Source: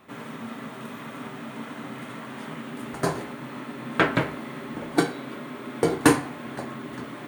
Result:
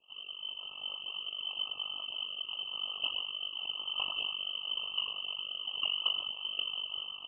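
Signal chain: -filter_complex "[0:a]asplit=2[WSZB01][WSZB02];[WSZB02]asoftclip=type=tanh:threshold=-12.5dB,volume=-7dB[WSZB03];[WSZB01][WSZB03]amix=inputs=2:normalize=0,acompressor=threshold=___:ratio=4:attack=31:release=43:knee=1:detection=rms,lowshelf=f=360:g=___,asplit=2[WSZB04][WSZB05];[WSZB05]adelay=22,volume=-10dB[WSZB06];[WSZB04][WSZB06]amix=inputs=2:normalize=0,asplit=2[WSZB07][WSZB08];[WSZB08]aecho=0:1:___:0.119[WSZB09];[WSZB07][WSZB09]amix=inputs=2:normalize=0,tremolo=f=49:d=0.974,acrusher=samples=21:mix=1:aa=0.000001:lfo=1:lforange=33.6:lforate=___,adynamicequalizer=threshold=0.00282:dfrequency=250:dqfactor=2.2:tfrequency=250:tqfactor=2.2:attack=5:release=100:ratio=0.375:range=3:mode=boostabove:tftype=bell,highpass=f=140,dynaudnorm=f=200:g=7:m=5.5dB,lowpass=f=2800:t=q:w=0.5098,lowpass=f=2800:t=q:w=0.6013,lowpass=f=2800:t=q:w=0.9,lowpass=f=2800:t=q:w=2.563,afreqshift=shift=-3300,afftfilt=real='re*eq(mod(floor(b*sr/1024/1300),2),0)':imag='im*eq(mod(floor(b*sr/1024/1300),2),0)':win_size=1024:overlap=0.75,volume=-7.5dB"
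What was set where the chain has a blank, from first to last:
-28dB, -3.5, 94, 0.95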